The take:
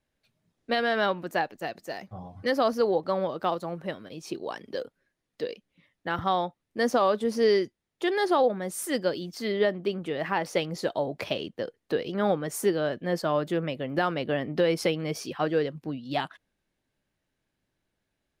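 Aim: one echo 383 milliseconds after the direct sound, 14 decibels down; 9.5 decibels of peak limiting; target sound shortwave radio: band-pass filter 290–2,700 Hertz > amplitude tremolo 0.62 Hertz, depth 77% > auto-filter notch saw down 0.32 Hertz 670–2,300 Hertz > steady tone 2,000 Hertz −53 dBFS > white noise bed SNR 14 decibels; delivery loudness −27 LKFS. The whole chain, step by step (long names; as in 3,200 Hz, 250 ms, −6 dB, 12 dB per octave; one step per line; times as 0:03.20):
brickwall limiter −23 dBFS
band-pass filter 290–2,700 Hz
single-tap delay 383 ms −14 dB
amplitude tremolo 0.62 Hz, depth 77%
auto-filter notch saw down 0.32 Hz 670–2,300 Hz
steady tone 2,000 Hz −53 dBFS
white noise bed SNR 14 dB
level +13.5 dB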